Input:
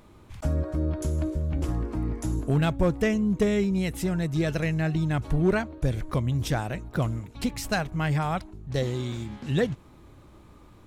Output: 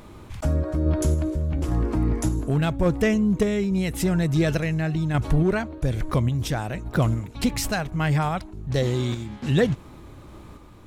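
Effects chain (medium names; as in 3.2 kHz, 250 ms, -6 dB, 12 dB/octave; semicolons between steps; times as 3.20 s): in parallel at +0.5 dB: peak limiter -25 dBFS, peak gain reduction 10.5 dB; on the sum: random-step tremolo; trim +2.5 dB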